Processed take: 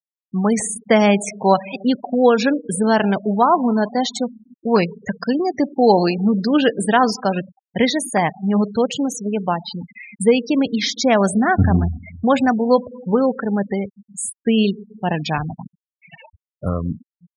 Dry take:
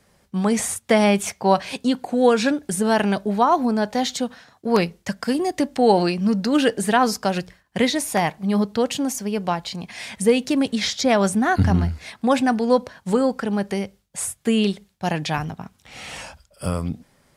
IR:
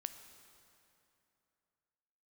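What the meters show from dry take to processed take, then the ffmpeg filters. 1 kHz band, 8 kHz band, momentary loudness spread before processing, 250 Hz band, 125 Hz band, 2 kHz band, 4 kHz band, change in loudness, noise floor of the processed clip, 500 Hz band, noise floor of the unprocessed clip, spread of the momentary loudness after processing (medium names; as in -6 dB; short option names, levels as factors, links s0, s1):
+2.5 dB, 0.0 dB, 13 LU, +3.0 dB, +2.5 dB, +2.0 dB, +1.0 dB, +2.5 dB, under -85 dBFS, +2.5 dB, -61 dBFS, 11 LU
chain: -filter_complex "[0:a]asplit=2[s0][s1];[1:a]atrim=start_sample=2205[s2];[s1][s2]afir=irnorm=-1:irlink=0,volume=0.891[s3];[s0][s3]amix=inputs=2:normalize=0,afftfilt=real='re*gte(hypot(re,im),0.1)':imag='im*gte(hypot(re,im),0.1)':win_size=1024:overlap=0.75,volume=0.841"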